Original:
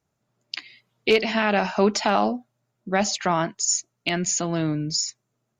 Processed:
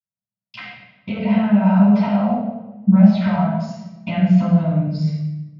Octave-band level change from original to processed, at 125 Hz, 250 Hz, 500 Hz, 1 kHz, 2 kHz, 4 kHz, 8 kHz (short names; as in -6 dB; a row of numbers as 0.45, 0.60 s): +14.5 dB, +12.5 dB, -2.5 dB, -1.0 dB, -6.0 dB, under -10 dB, under -30 dB